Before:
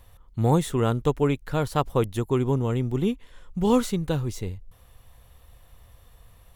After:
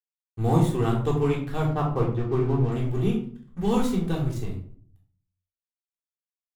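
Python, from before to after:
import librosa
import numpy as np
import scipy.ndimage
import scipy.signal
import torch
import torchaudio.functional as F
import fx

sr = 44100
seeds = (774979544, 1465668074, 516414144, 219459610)

y = fx.lowpass(x, sr, hz=1900.0, slope=12, at=(1.65, 2.72))
y = np.sign(y) * np.maximum(np.abs(y) - 10.0 ** (-39.0 / 20.0), 0.0)
y = fx.room_shoebox(y, sr, seeds[0], volume_m3=550.0, walls='furnished', distance_m=3.6)
y = y * librosa.db_to_amplitude(-6.5)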